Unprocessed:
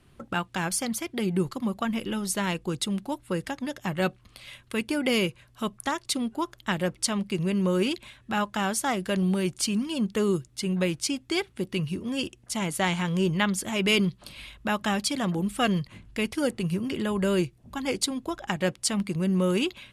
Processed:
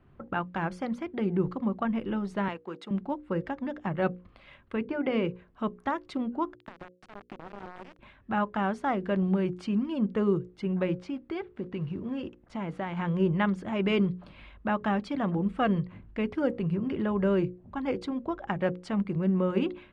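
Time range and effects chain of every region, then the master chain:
2.48–2.91 s: companding laws mixed up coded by A + high-pass 190 Hz 24 dB/octave + bass shelf 390 Hz -10.5 dB
4.76–5.25 s: expander -40 dBFS + distance through air 130 m + hum notches 50/100/150/200/250/300/350/400/450/500 Hz
6.55–7.99 s: high-pass 64 Hz 24 dB/octave + compression 12:1, threshold -38 dBFS + word length cut 6-bit, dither none
10.95–12.97 s: block-companded coder 5-bit + treble shelf 10 kHz -11.5 dB + compression 3:1, threshold -29 dBFS
whole clip: low-pass 1.5 kHz 12 dB/octave; hum notches 60/120/180/240/300/360/420/480/540 Hz

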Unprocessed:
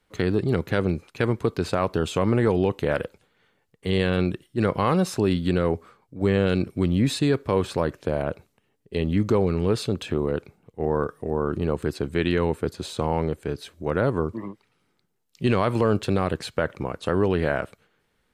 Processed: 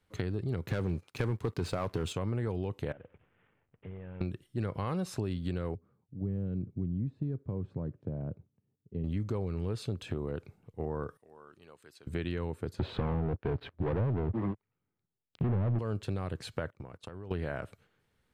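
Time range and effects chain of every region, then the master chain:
0.66–2.13 s: high-pass 51 Hz 6 dB/octave + waveshaping leveller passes 2
2.92–4.21 s: CVSD coder 16 kbps + distance through air 200 m + compression 5:1, threshold -39 dBFS
5.75–9.04 s: de-esser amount 80% + band-pass filter 160 Hz, Q 1.1
11.17–12.07 s: low-pass 2.3 kHz 6 dB/octave + differentiator
12.79–15.79 s: low-pass that closes with the level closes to 440 Hz, closed at -18.5 dBFS + waveshaping leveller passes 5 + distance through air 460 m
16.70–17.31 s: gate -38 dBFS, range -19 dB + compression 16:1, threshold -35 dBFS
whole clip: peaking EQ 100 Hz +9 dB 1.2 oct; compression 3:1, threshold -26 dBFS; trim -6.5 dB

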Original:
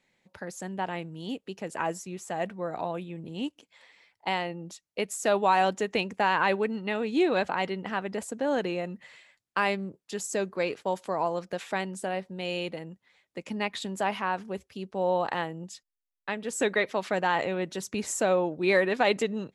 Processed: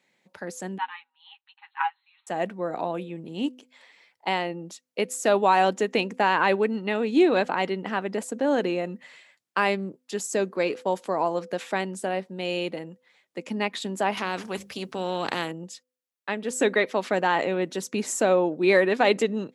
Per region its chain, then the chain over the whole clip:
0.78–2.27 s: brick-wall FIR band-pass 780–4300 Hz + comb 7.4 ms, depth 74% + upward expansion, over -50 dBFS
14.17–15.52 s: bass shelf 280 Hz +9 dB + hum notches 50/100/150/200 Hz + spectrum-flattening compressor 2:1
whole clip: high-pass 180 Hz 12 dB/octave; de-hum 252.7 Hz, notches 2; dynamic bell 280 Hz, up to +4 dB, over -42 dBFS, Q 1; trim +2.5 dB

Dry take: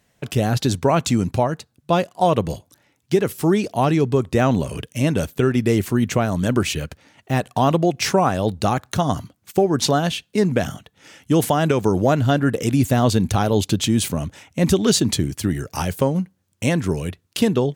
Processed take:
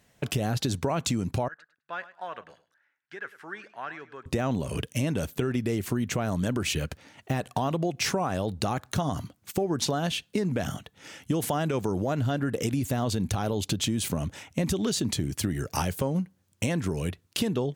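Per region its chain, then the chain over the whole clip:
1.48–4.26 s: band-pass filter 1.6 kHz, Q 5.7 + feedback delay 103 ms, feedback 17%, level -16 dB
whole clip: peak limiter -11 dBFS; compression, threshold -24 dBFS

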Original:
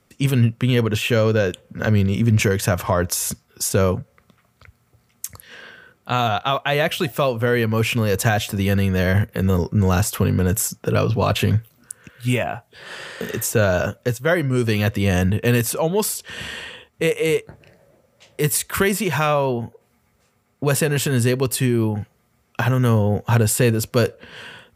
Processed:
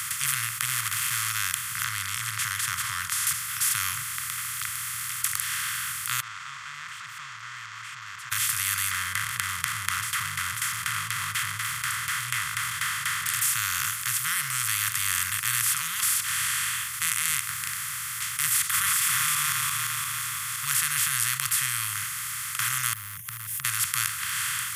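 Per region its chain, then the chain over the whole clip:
0.65–1.30 s: median filter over 25 samples + de-esser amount 60%
1.84–3.27 s: low-pass 3.4 kHz + peaking EQ 2.5 kHz -12.5 dB 0.59 oct
6.20–8.32 s: jump at every zero crossing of -20 dBFS + Butterworth band-pass 700 Hz, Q 7 + distance through air 210 m
8.91–13.26 s: jump at every zero crossing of -22.5 dBFS + small resonant body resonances 460/2000/3200 Hz, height 13 dB, ringing for 25 ms + LFO low-pass saw down 4.1 Hz 430–2000 Hz
18.66–20.65 s: backward echo that repeats 173 ms, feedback 43%, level -1 dB + small resonant body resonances 320/1100/3400 Hz, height 16 dB
22.93–23.65 s: companding laws mixed up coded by A + inverse Chebyshev band-stop 670–8100 Hz, stop band 60 dB + compression, threshold -33 dBFS
whole clip: spectral levelling over time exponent 0.2; elliptic band-stop 140–1300 Hz, stop band 40 dB; tilt EQ +3.5 dB/octave; trim -18 dB

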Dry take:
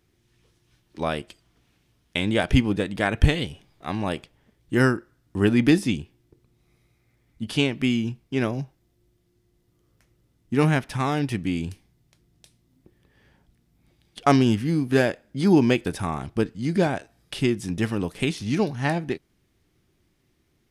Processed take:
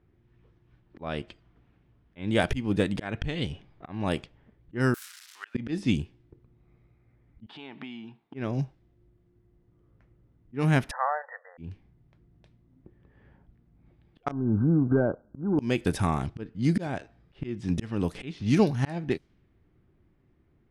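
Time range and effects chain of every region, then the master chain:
4.94–5.55 s: zero-crossing glitches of -24.5 dBFS + ladder high-pass 1.1 kHz, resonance 25% + treble shelf 8.8 kHz +10 dB
7.46–8.34 s: compression 12:1, threshold -31 dBFS + cabinet simulation 340–9300 Hz, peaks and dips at 360 Hz -3 dB, 530 Hz -10 dB, 860 Hz +9 dB, 3.7 kHz +8 dB, 6.3 kHz -6 dB
10.91–11.58 s: block-companded coder 7-bit + brick-wall FIR band-pass 470–2000 Hz
14.31–15.59 s: waveshaping leveller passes 1 + brick-wall FIR low-pass 1.6 kHz + compression 2.5:1, threshold -23 dBFS
whole clip: slow attack 303 ms; level-controlled noise filter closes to 1.6 kHz, open at -24 dBFS; bass shelf 230 Hz +4.5 dB

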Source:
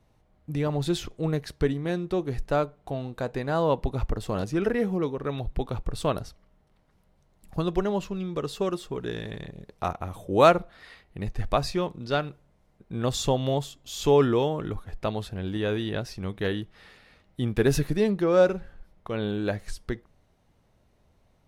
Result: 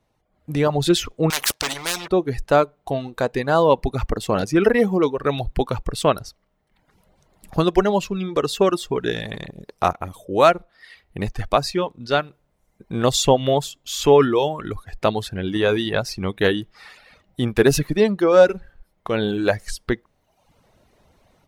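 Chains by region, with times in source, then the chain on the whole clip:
1.30–2.08 s: waveshaping leveller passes 3 + spectrum-flattening compressor 4:1
whole clip: reverb removal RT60 0.84 s; bass shelf 180 Hz -8 dB; level rider gain up to 13.5 dB; trim -1 dB

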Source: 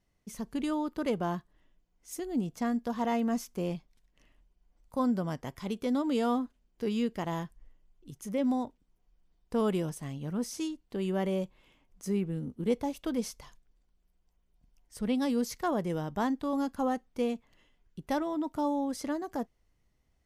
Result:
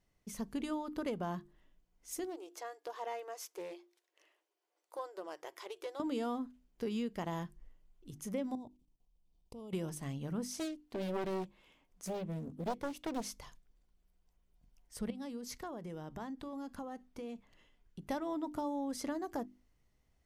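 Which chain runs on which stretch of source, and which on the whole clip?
2.24–6.00 s: compression 2:1, threshold -38 dBFS + brick-wall FIR high-pass 310 Hz + loudspeaker Doppler distortion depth 0.15 ms
8.55–9.73 s: tone controls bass +3 dB, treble +1 dB + level held to a coarse grid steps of 23 dB + Butterworth band-stop 1.6 kHz, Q 1.2
10.47–13.29 s: bass shelf 190 Hz -6.5 dB + loudspeaker Doppler distortion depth 0.98 ms
15.10–18.06 s: treble shelf 12 kHz -5.5 dB + compression 12:1, threshold -38 dBFS
whole clip: compression, threshold -32 dBFS; hum notches 50/100/150/200/250/300/350 Hz; trim -1 dB

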